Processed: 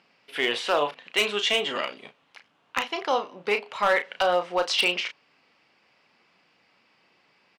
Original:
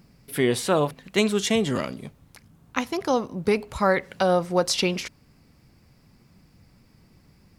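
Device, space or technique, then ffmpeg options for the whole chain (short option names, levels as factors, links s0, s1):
megaphone: -filter_complex "[0:a]highpass=630,lowpass=3600,equalizer=f=2900:t=o:w=0.53:g=8,asoftclip=type=hard:threshold=0.141,asplit=2[s0][s1];[s1]adelay=34,volume=0.398[s2];[s0][s2]amix=inputs=2:normalize=0,volume=1.26"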